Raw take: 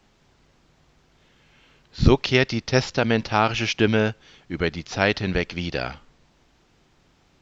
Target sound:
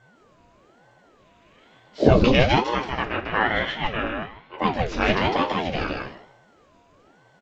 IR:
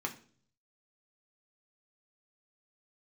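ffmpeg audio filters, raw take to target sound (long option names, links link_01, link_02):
-filter_complex "[0:a]aeval=exprs='val(0)+0.00224*sin(2*PI*830*n/s)':channel_layout=same,asettb=1/sr,asplit=3[link_01][link_02][link_03];[link_01]atrim=end=2.684[link_04];[link_02]atrim=start=2.68:end=4.58,asetpts=PTS-STARTPTS,afade=type=in:duration=0.004:curve=qsin,afade=type=out:start_time=1.896:duration=0.004:curve=qsin,acrossover=split=560 2900:gain=0.2 1 0.0794[link_05][link_06][link_07];[link_05][link_06][link_07]amix=inputs=3:normalize=0[link_08];[link_03]atrim=start=4.576[link_09];[link_04][link_08]acrossfade=duration=0.004:curve1=hsin:curve2=qsin[link_10];[link_10][link_09]acrossfade=duration=0.004:curve1=qsin:curve2=hsin,aecho=1:1:155|310|465:0.708|0.127|0.0229[link_11];[1:a]atrim=start_sample=2205,asetrate=48510,aresample=44100[link_12];[link_11][link_12]afir=irnorm=-1:irlink=0,aeval=exprs='val(0)*sin(2*PI*420*n/s+420*0.7/1.1*sin(2*PI*1.1*n/s))':channel_layout=same"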